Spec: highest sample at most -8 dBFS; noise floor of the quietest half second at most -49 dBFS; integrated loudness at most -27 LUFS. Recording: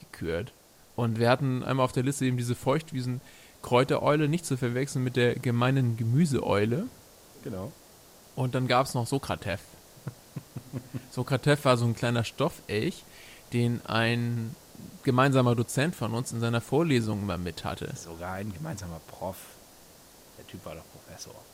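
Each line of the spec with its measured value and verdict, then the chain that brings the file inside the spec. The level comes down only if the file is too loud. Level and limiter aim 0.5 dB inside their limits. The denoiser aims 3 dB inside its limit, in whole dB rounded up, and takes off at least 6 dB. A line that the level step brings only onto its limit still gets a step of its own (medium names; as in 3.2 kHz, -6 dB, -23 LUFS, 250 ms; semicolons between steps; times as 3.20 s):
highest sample -7.5 dBFS: fail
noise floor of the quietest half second -55 dBFS: pass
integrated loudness -28.0 LUFS: pass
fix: peak limiter -8.5 dBFS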